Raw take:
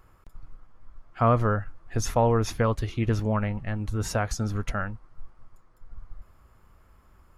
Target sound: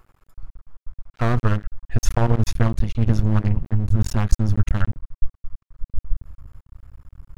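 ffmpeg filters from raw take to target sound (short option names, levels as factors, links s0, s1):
-af "asubboost=boost=8.5:cutoff=110,aeval=exprs='max(val(0),0)':c=same,volume=1.41"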